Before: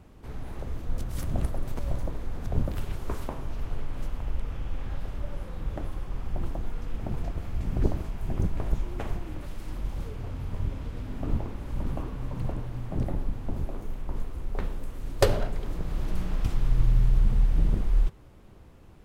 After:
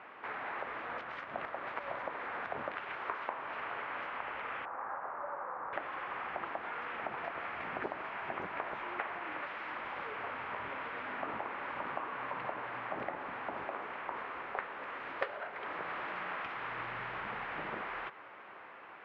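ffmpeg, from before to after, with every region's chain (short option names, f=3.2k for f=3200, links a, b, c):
-filter_complex "[0:a]asettb=1/sr,asplit=3[a][b][c];[a]atrim=end=4.654[d];[b]atrim=start=4.65:end=5.73,asetpts=PTS-STARTPTS,afade=t=in:d=0.004:c=qsin,afade=t=out:st=1.076:d=0.004:c=qsin,lowpass=f=1.1k:w=0.5412,lowpass=f=1.1k:w=1.3066,tiltshelf=f=750:g=-8.5[e];[c]atrim=start=5.726[f];[d][e]acrossfade=d=0.004:c1=hsin:c2=qsin[g];[g][f]acrossfade=d=0.004:c1=qsin:c2=hsin,highpass=1.2k,acompressor=threshold=-53dB:ratio=4,lowpass=f=2.2k:w=0.5412,lowpass=f=2.2k:w=1.3066,volume=18dB"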